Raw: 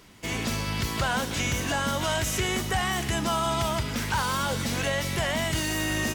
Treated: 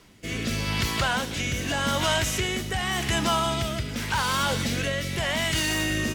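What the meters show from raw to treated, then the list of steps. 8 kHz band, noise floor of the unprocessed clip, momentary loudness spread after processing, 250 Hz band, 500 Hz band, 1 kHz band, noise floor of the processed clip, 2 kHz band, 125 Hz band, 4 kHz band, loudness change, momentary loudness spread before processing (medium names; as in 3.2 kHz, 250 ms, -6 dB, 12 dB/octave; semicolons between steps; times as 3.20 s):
+0.5 dB, -32 dBFS, 5 LU, +1.0 dB, +0.5 dB, +0.5 dB, -33 dBFS, +2.0 dB, +0.5 dB, +3.0 dB, +1.5 dB, 3 LU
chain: rotary cabinet horn 0.85 Hz; dynamic bell 2.8 kHz, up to +4 dB, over -42 dBFS, Q 0.7; trim +2 dB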